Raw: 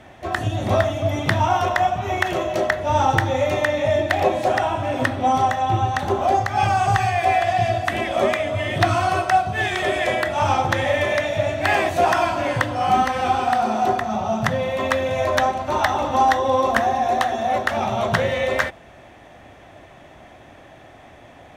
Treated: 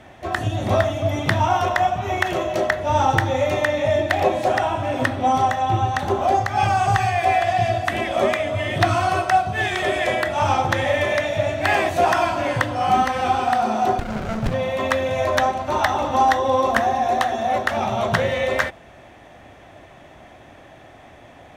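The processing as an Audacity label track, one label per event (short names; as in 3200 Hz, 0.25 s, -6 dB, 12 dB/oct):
13.990000	14.540000	running maximum over 33 samples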